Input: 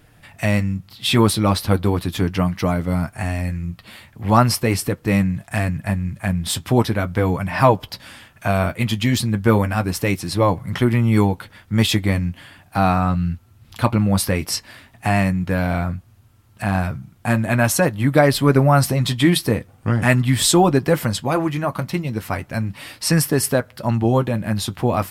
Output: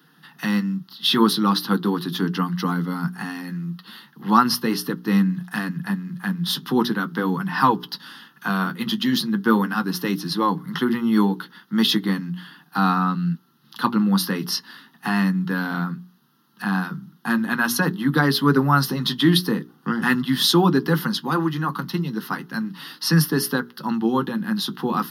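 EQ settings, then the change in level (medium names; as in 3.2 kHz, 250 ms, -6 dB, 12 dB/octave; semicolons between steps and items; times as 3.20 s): steep high-pass 150 Hz 72 dB/octave; hum notches 60/120/180/240/300/360/420 Hz; static phaser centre 2.3 kHz, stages 6; +2.5 dB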